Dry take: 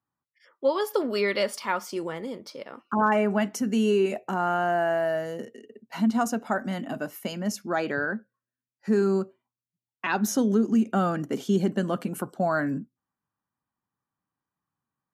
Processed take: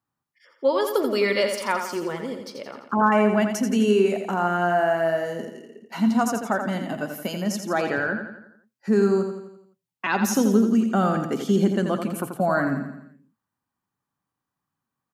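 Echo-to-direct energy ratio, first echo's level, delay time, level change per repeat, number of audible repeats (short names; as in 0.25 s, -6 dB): -5.5 dB, -7.0 dB, 85 ms, -6.0 dB, 5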